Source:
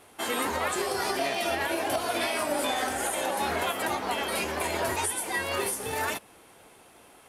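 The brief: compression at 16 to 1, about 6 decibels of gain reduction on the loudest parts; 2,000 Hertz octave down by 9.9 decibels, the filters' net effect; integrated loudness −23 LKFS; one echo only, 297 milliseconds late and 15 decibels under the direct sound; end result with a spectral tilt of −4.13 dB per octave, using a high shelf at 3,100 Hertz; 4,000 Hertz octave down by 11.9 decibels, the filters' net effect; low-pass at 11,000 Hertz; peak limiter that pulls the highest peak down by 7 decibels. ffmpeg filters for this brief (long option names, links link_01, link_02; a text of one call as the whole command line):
ffmpeg -i in.wav -af "lowpass=11000,equalizer=frequency=2000:width_type=o:gain=-8.5,highshelf=frequency=3100:gain=-8.5,equalizer=frequency=4000:width_type=o:gain=-6,acompressor=threshold=-32dB:ratio=16,alimiter=level_in=6dB:limit=-24dB:level=0:latency=1,volume=-6dB,aecho=1:1:297:0.178,volume=16dB" out.wav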